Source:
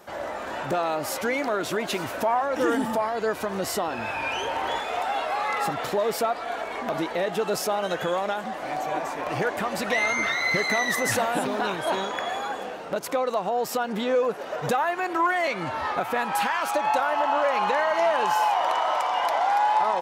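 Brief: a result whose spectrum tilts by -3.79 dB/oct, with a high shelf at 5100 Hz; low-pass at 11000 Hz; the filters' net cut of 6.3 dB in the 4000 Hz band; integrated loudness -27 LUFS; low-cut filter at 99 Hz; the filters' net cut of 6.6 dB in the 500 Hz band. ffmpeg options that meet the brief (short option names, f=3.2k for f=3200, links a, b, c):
-af "highpass=99,lowpass=11k,equalizer=f=500:t=o:g=-8.5,equalizer=f=4k:t=o:g=-7,highshelf=f=5.1k:g=-3,volume=2dB"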